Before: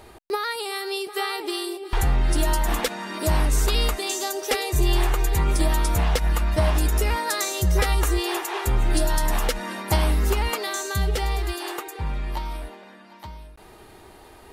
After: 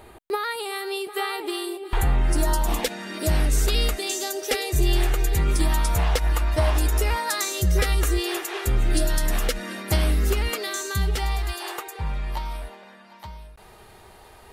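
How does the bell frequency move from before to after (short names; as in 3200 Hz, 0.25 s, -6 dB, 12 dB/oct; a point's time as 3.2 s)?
bell -10.5 dB 0.51 oct
2.14 s 5500 Hz
2.96 s 1000 Hz
5.42 s 1000 Hz
6.11 s 190 Hz
7.03 s 190 Hz
7.6 s 920 Hz
10.68 s 920 Hz
11.62 s 300 Hz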